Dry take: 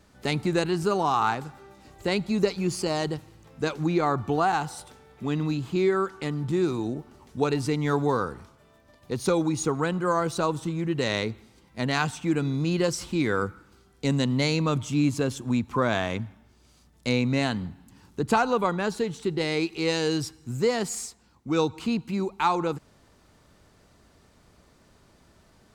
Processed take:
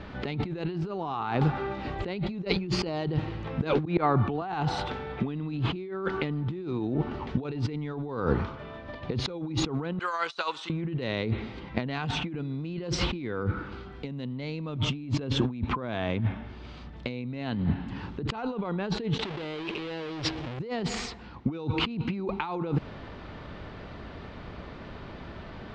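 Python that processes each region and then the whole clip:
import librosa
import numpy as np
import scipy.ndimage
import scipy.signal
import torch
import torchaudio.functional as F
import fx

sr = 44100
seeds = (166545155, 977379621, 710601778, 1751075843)

y = fx.chain(x, sr, fx.auto_swell(attack_ms=644.0),
    fx.band_squash(depth_pct=40), at=(3.74, 4.42))
y = fx.chain(y, sr, fx.highpass(hz=660.0, slope=6),
    fx.differentiator(),
    fx.over_compress(threshold_db=-45.0, ratio=-0.5), at=(9.99, 10.7))
y = fx.chain(y, sr, fx.halfwave_hold(),
    fx.low_shelf(hz=340.0, db=-11.0),
    fx.env_flatten(amount_pct=100), at=(19.19, 20.59))
y = scipy.signal.sosfilt(scipy.signal.butter(4, 3500.0, 'lowpass', fs=sr, output='sos'), y)
y = fx.dynamic_eq(y, sr, hz=1400.0, q=0.72, threshold_db=-38.0, ratio=4.0, max_db=-6)
y = fx.over_compress(y, sr, threshold_db=-38.0, ratio=-1.0)
y = y * 10.0 ** (7.0 / 20.0)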